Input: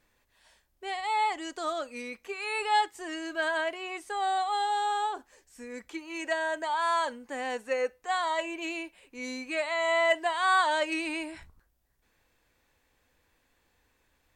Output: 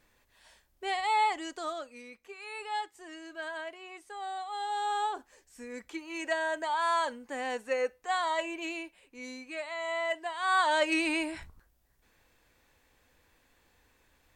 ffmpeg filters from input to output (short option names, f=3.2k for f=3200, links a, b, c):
-af "volume=22dB,afade=t=out:st=0.97:d=1.02:silence=0.251189,afade=t=in:st=4.49:d=0.53:silence=0.375837,afade=t=out:st=8.47:d=1:silence=0.473151,afade=t=in:st=10.36:d=0.62:silence=0.281838"